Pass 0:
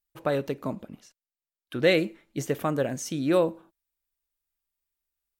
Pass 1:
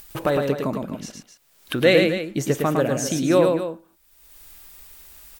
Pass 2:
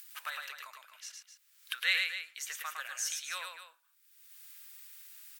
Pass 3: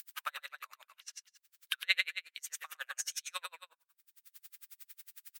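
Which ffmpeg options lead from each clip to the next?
-af "acompressor=mode=upward:threshold=-25dB:ratio=2.5,aecho=1:1:107.9|256.6:0.631|0.282,volume=4.5dB"
-af "highpass=f=1.4k:w=0.5412,highpass=f=1.4k:w=1.3066,volume=-6dB"
-af "aeval=exprs='val(0)*pow(10,-39*(0.5-0.5*cos(2*PI*11*n/s))/20)':c=same,volume=4.5dB"

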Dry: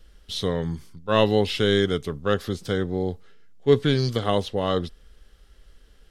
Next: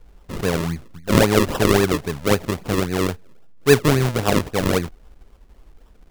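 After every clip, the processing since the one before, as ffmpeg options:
-af "acrusher=samples=40:mix=1:aa=0.000001:lfo=1:lforange=40:lforate=3.7,volume=4dB"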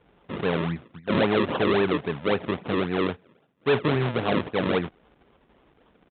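-af "aresample=8000,asoftclip=type=tanh:threshold=-16dB,aresample=44100,highpass=150"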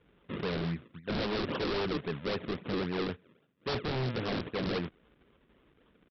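-af "equalizer=f=780:w=1.8:g=-9,aresample=11025,aeval=exprs='0.075*(abs(mod(val(0)/0.075+3,4)-2)-1)':c=same,aresample=44100,volume=-4dB"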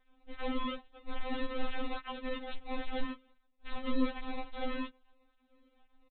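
-af "aresample=8000,acrusher=samples=28:mix=1:aa=0.000001:lfo=1:lforange=16.8:lforate=1.2,aresample=44100,afftfilt=real='re*3.46*eq(mod(b,12),0)':imag='im*3.46*eq(mod(b,12),0)':win_size=2048:overlap=0.75,volume=4dB"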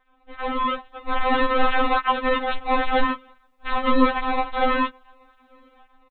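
-af "equalizer=f=1.1k:t=o:w=2.1:g=13.5,dynaudnorm=f=320:g=5:m=10.5dB"

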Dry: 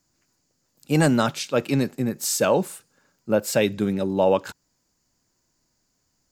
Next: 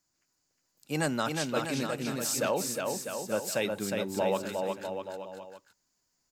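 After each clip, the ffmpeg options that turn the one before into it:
-filter_complex "[0:a]lowshelf=f=460:g=-8,asplit=2[a][b];[b]aecho=0:1:360|648|878.4|1063|1210:0.631|0.398|0.251|0.158|0.1[c];[a][c]amix=inputs=2:normalize=0,volume=-6.5dB"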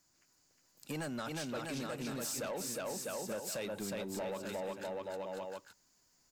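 -af "acompressor=threshold=-41dB:ratio=4,asoftclip=type=tanh:threshold=-39dB,volume=5.5dB"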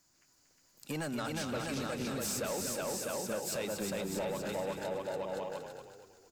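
-filter_complex "[0:a]asplit=6[a][b][c][d][e][f];[b]adelay=234,afreqshift=-31,volume=-7dB[g];[c]adelay=468,afreqshift=-62,volume=-14.7dB[h];[d]adelay=702,afreqshift=-93,volume=-22.5dB[i];[e]adelay=936,afreqshift=-124,volume=-30.2dB[j];[f]adelay=1170,afreqshift=-155,volume=-38dB[k];[a][g][h][i][j][k]amix=inputs=6:normalize=0,volume=2.5dB"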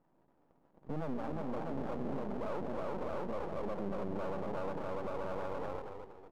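-af "afftfilt=real='re*between(b*sr/4096,130,990)':imag='im*between(b*sr/4096,130,990)':win_size=4096:overlap=0.75,alimiter=level_in=15.5dB:limit=-24dB:level=0:latency=1:release=62,volume=-15.5dB,aeval=exprs='max(val(0),0)':c=same,volume=12dB"

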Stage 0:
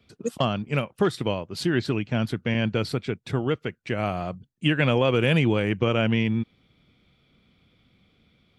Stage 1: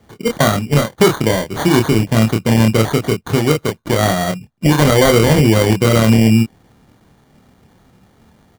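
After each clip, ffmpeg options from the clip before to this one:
-filter_complex "[0:a]acrusher=samples=17:mix=1:aa=0.000001,asplit=2[a][b];[b]adelay=27,volume=-4dB[c];[a][c]amix=inputs=2:normalize=0,alimiter=level_in=11.5dB:limit=-1dB:release=50:level=0:latency=1,volume=-1dB"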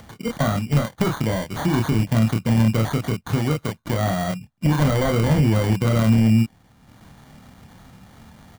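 -af "deesser=0.4,equalizer=f=400:t=o:w=0.8:g=-9,acompressor=mode=upward:threshold=-33dB:ratio=2.5,volume=-3dB"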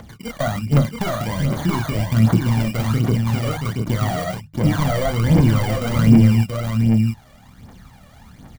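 -af "bandreject=f=50:t=h:w=6,bandreject=f=100:t=h:w=6,bandreject=f=150:t=h:w=6,aecho=1:1:678:0.631,aphaser=in_gain=1:out_gain=1:delay=1.8:decay=0.63:speed=1.3:type=triangular,volume=-2.5dB"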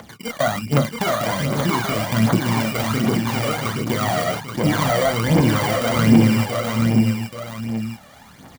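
-af "highpass=f=350:p=1,aecho=1:1:830:0.447,volume=4.5dB"

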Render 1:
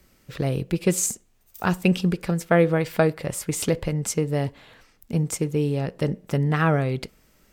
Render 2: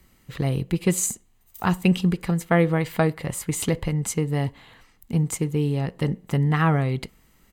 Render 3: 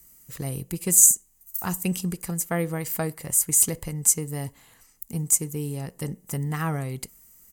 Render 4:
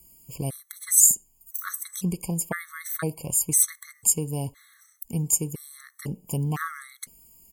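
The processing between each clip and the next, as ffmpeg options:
-af "equalizer=f=5.4k:t=o:w=0.22:g=-8.5,bandreject=f=600:w=12,aecho=1:1:1:0.31"
-af "aexciter=amount=11.6:drive=1.5:freq=5.4k,volume=-7.5dB"
-af "afftfilt=real='re*gt(sin(2*PI*0.99*pts/sr)*(1-2*mod(floor(b*sr/1024/1100),2)),0)':imag='im*gt(sin(2*PI*0.99*pts/sr)*(1-2*mod(floor(b*sr/1024/1100),2)),0)':win_size=1024:overlap=0.75,volume=2dB"

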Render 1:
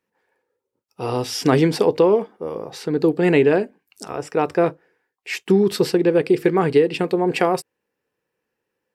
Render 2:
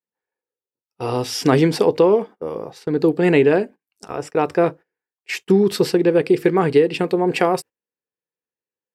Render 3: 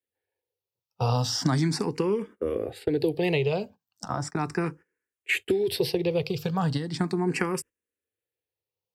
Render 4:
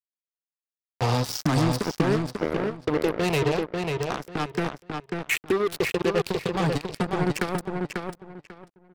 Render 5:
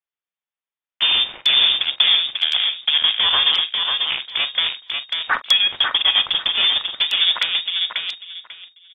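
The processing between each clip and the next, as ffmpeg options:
-af "agate=range=-20dB:threshold=-34dB:ratio=16:detection=peak,volume=1dB"
-filter_complex "[0:a]acrossover=split=140|2600[a][b][c];[a]acompressor=threshold=-39dB:ratio=4[d];[b]acompressor=threshold=-26dB:ratio=4[e];[c]acompressor=threshold=-31dB:ratio=4[f];[d][e][f]amix=inputs=3:normalize=0,equalizer=f=93:t=o:w=1.1:g=11.5,asplit=2[g][h];[h]afreqshift=0.37[i];[g][i]amix=inputs=2:normalize=1,volume=3dB"
-filter_complex "[0:a]acrossover=split=320|3400[a][b][c];[a]crystalizer=i=7.5:c=0[d];[d][b][c]amix=inputs=3:normalize=0,acrusher=bits=3:mix=0:aa=0.5,asplit=2[e][f];[f]adelay=543,lowpass=f=4.6k:p=1,volume=-4dB,asplit=2[g][h];[h]adelay=543,lowpass=f=4.6k:p=1,volume=0.22,asplit=2[i][j];[j]adelay=543,lowpass=f=4.6k:p=1,volume=0.22[k];[e][g][i][k]amix=inputs=4:normalize=0"
-filter_complex "[0:a]lowpass=f=3.1k:t=q:w=0.5098,lowpass=f=3.1k:t=q:w=0.6013,lowpass=f=3.1k:t=q:w=0.9,lowpass=f=3.1k:t=q:w=2.563,afreqshift=-3700,asplit=2[a][b];[b]adelay=44,volume=-14dB[c];[a][c]amix=inputs=2:normalize=0,volume=6.5dB" -ar 44100 -c:a aac -b:a 48k

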